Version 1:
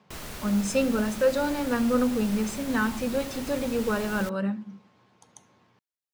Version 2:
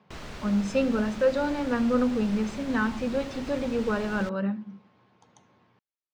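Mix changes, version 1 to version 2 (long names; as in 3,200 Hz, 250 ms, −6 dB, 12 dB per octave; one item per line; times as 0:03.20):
background: add high-shelf EQ 10,000 Hz +10.5 dB
master: add high-frequency loss of the air 140 metres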